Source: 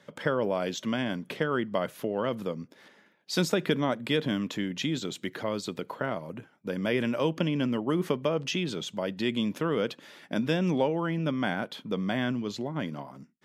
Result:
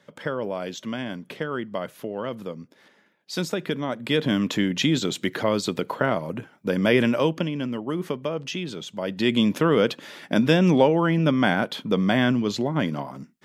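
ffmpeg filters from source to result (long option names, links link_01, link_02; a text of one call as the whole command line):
ffmpeg -i in.wav -af "volume=17.5dB,afade=type=in:start_time=3.87:duration=0.66:silence=0.334965,afade=type=out:start_time=7:duration=0.51:silence=0.354813,afade=type=in:start_time=8.93:duration=0.45:silence=0.354813" out.wav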